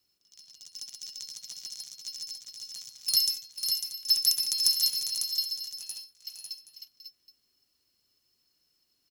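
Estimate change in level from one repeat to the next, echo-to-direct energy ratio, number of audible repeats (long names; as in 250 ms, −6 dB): repeats not evenly spaced, −3.5 dB, 4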